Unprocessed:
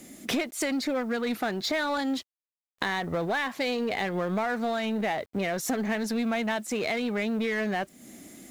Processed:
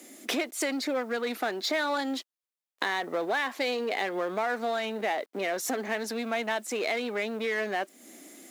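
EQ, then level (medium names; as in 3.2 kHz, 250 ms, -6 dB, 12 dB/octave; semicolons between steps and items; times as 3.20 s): high-pass 280 Hz 24 dB/octave; 0.0 dB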